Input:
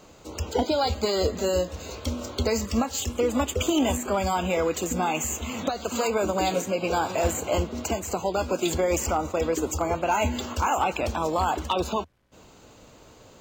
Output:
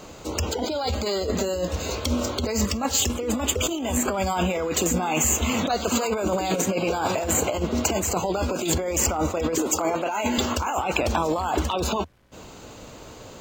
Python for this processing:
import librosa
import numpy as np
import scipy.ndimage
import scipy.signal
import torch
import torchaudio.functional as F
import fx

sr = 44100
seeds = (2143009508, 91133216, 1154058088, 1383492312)

y = fx.highpass(x, sr, hz=230.0, slope=12, at=(9.58, 10.38))
y = fx.over_compress(y, sr, threshold_db=-29.0, ratio=-1.0)
y = F.gain(torch.from_numpy(y), 5.0).numpy()